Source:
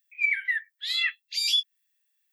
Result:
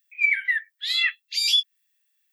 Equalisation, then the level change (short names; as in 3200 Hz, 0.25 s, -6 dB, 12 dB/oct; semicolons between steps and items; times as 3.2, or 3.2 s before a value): elliptic high-pass 1100 Hz; +4.0 dB